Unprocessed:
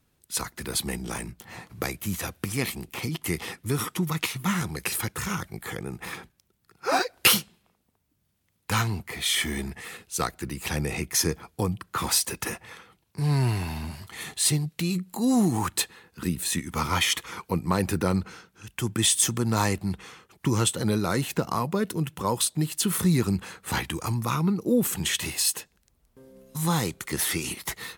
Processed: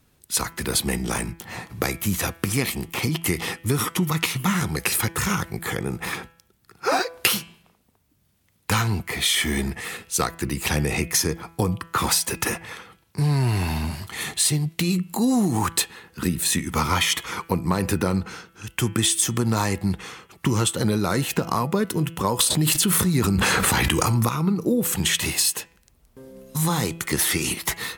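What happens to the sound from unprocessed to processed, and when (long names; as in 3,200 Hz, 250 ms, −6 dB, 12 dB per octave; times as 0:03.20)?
0:22.39–0:24.29: envelope flattener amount 100%
whole clip: downward compressor, threshold −25 dBFS; hum removal 166.5 Hz, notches 20; level +7.5 dB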